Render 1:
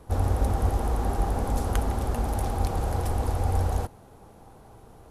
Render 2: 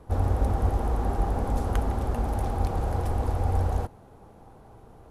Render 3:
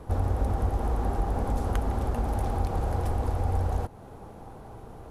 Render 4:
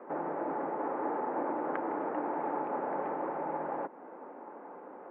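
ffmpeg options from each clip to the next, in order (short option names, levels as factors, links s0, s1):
-af "highshelf=f=3200:g=-8.5"
-af "acompressor=threshold=0.0178:ratio=2,volume=2"
-af "highpass=f=200:t=q:w=0.5412,highpass=f=200:t=q:w=1.307,lowpass=f=2100:t=q:w=0.5176,lowpass=f=2100:t=q:w=0.7071,lowpass=f=2100:t=q:w=1.932,afreqshift=69"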